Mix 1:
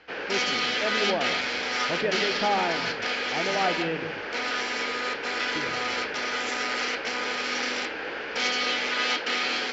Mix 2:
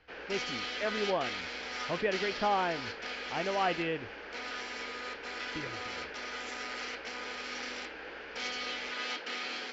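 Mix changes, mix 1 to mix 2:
background −11.0 dB
reverb: off

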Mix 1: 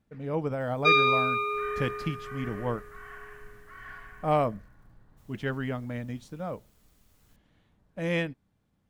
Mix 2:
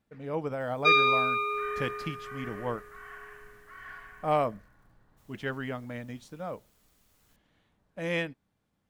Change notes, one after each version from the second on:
master: add low-shelf EQ 270 Hz −7.5 dB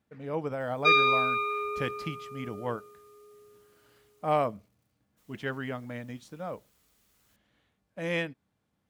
second sound: muted
master: add high-pass filter 52 Hz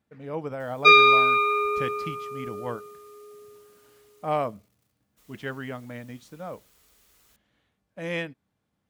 background +7.5 dB

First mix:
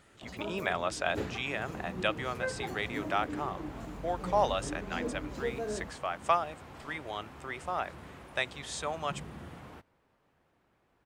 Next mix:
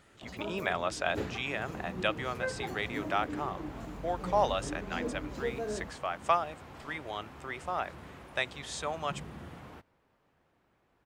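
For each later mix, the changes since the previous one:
master: add parametric band 8,900 Hz −2.5 dB 0.45 octaves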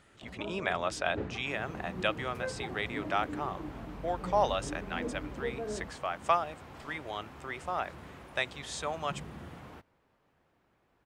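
first sound: add head-to-tape spacing loss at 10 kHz 35 dB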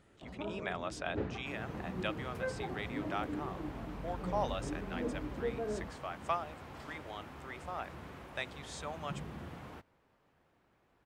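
speech −7.5 dB

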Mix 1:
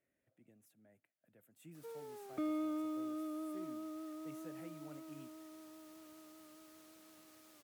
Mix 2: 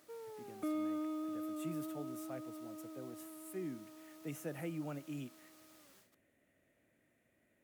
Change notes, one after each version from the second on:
speech +11.0 dB
background: entry −1.75 s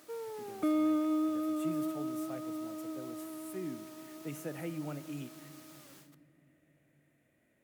background +6.0 dB
reverb: on, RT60 2.7 s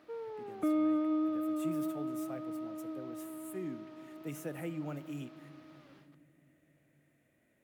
background: add high-frequency loss of the air 280 metres

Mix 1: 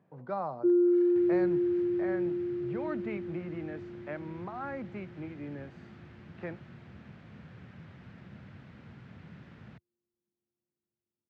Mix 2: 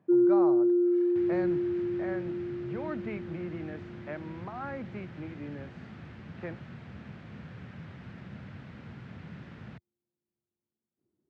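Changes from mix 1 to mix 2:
first sound: entry −0.55 s
second sound +5.0 dB
reverb: on

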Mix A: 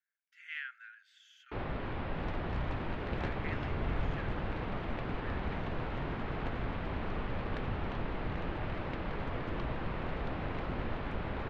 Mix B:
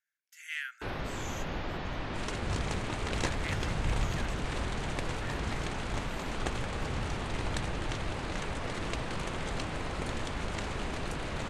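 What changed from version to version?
first sound: entry −0.70 s
second sound +5.5 dB
master: remove high-frequency loss of the air 350 metres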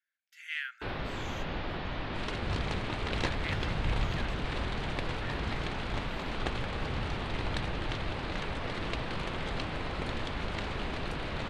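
master: add high shelf with overshoot 5,300 Hz −8.5 dB, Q 1.5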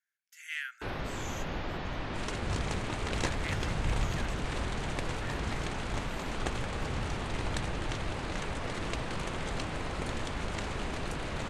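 master: add high shelf with overshoot 5,300 Hz +8.5 dB, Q 1.5

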